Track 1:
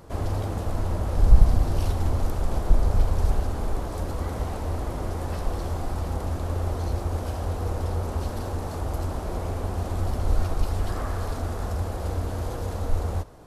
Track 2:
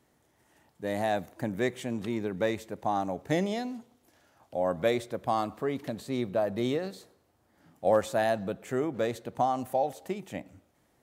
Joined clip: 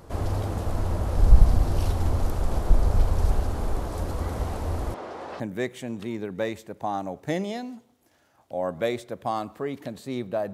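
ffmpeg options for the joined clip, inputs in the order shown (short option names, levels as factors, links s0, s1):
-filter_complex "[0:a]asettb=1/sr,asplit=3[s0][s1][s2];[s0]atrim=end=4.944[s3];[s1]atrim=start=4.94:end=5.4,asetpts=PTS-STARTPTS,afade=t=in:d=0.004:c=qsin,afade=t=out:st=0.456:d=0.004:c=qsin,highpass=390,lowpass=3900[s4];[s2]atrim=start=5.396[s5];[s3][s4]acrossfade=d=0.004:c1=hsin:c2=qsin[s6];[s6][s5]acrossfade=d=0.004:c1=qsin:c2=hsin,apad=whole_dur=10.53,atrim=end=10.53,atrim=end=5.402[s7];[1:a]atrim=start=1.418:end=6.55[s8];[s7][s8]acrossfade=d=0.004:c1=hsin:c2=hsin"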